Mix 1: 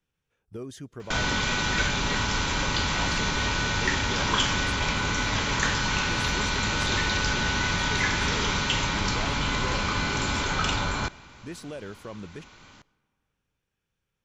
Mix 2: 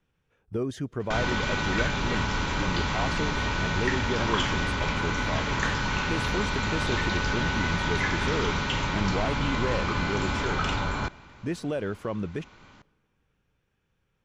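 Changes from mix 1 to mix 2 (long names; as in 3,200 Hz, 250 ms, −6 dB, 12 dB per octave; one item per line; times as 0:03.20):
speech +8.5 dB
master: add high-shelf EQ 3,800 Hz −11.5 dB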